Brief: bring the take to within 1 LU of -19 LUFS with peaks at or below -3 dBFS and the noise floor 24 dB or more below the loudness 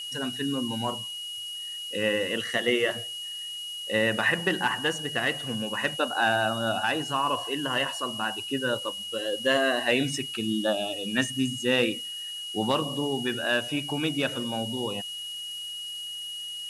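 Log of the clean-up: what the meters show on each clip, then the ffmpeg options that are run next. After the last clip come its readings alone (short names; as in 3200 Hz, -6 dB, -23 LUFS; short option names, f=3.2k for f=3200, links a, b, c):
steady tone 2900 Hz; tone level -34 dBFS; noise floor -37 dBFS; noise floor target -52 dBFS; loudness -27.5 LUFS; peak -10.5 dBFS; loudness target -19.0 LUFS
-> -af "bandreject=f=2.9k:w=30"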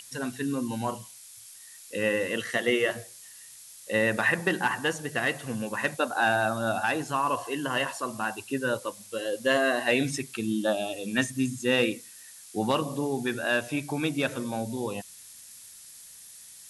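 steady tone none; noise floor -49 dBFS; noise floor target -52 dBFS
-> -af "afftdn=nr=6:nf=-49"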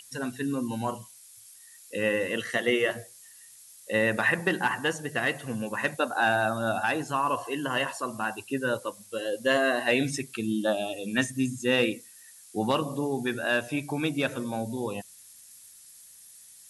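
noise floor -52 dBFS; loudness -28.0 LUFS; peak -11.0 dBFS; loudness target -19.0 LUFS
-> -af "volume=9dB,alimiter=limit=-3dB:level=0:latency=1"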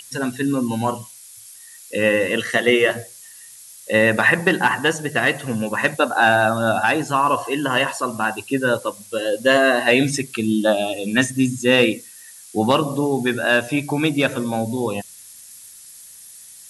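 loudness -19.0 LUFS; peak -3.0 dBFS; noise floor -43 dBFS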